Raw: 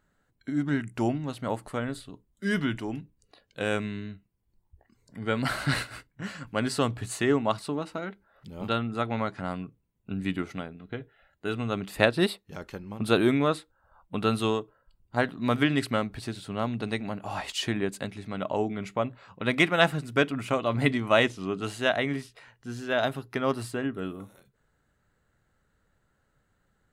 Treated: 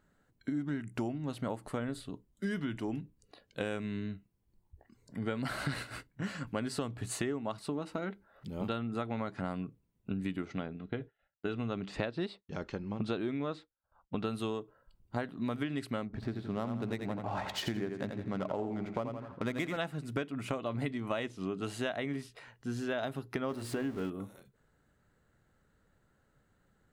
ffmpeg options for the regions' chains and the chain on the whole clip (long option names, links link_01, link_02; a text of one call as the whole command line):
ffmpeg -i in.wav -filter_complex "[0:a]asettb=1/sr,asplit=3[link_01][link_02][link_03];[link_01]atrim=end=10.454[link_04];[link_02]atrim=start=10.45:end=14.25,asetpts=PTS-STARTPTS,afade=type=in:duration=0.004:curve=qsin,afade=type=out:start_time=3.796:duration=0.004:curve=qsin,lowpass=frequency=6300:width=0.5412,lowpass=frequency=6300:width=1.3066,agate=range=-33dB:threshold=-52dB:ratio=3:release=100:detection=peak[link_05];[link_03]atrim=start=14.246[link_06];[link_04][link_05]acrossfade=duration=0.004:curve1=hsin:curve2=qsin[link_07];[link_07][link_06]acrossfade=duration=0.004:curve1=qsin:curve2=hsin,asettb=1/sr,asplit=3[link_08][link_09][link_10];[link_08]atrim=end=16.054[link_11];[link_09]atrim=start=16.05:end=19.77,asetpts=PTS-STARTPTS,afade=type=in:duration=0.004:curve=qsin,afade=type=out:start_time=3.716:duration=0.004:curve=qsin,equalizer=frequency=2800:width_type=o:width=0.37:gain=-5.5,adynamicsmooth=sensitivity=8:basefreq=1600,aecho=1:1:84|168|252|336|420:0.422|0.169|0.0675|0.027|0.0108,atrim=end_sample=164052[link_12];[link_10]atrim=start=19.766[link_13];[link_11][link_12]acrossfade=duration=0.004:curve1=hsin:curve2=qsin[link_14];[link_14][link_13]acrossfade=duration=0.004:curve1=qsin:curve2=hsin,asettb=1/sr,asplit=3[link_15][link_16][link_17];[link_15]atrim=end=23.494[link_18];[link_16]atrim=start=23.49:end=24.1,asetpts=PTS-STARTPTS,afade=type=in:duration=0.004:curve=qsin,afade=type=out:start_time=0.606:duration=0.004:curve=qsin,aeval=exprs='val(0)+0.5*0.015*sgn(val(0))':channel_layout=same,highshelf=frequency=5600:gain=-4.5,bandreject=frequency=60:width_type=h:width=6,bandreject=frequency=120:width_type=h:width=6,bandreject=frequency=180:width_type=h:width=6,bandreject=frequency=240:width_type=h:width=6,bandreject=frequency=300:width_type=h:width=6,bandreject=frequency=360:width_type=h:width=6,bandreject=frequency=420:width_type=h:width=6,bandreject=frequency=480:width_type=h:width=6,bandreject=frequency=540:width_type=h:width=6[link_19];[link_17]atrim=start=24.096[link_20];[link_18][link_19]acrossfade=duration=0.004:curve1=hsin:curve2=qsin[link_21];[link_21][link_20]acrossfade=duration=0.004:curve1=qsin:curve2=hsin,equalizer=frequency=260:width=0.47:gain=4,acompressor=threshold=-30dB:ratio=10,volume=-1.5dB" out.wav